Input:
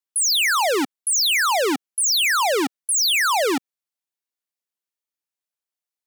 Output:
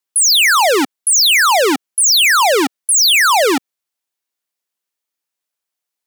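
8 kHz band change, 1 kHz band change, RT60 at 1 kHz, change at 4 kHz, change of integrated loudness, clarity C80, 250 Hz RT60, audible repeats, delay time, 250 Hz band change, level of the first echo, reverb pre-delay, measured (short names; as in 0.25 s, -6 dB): +8.0 dB, +8.0 dB, none, +8.0 dB, +8.0 dB, none, none, none, none, +6.5 dB, none, none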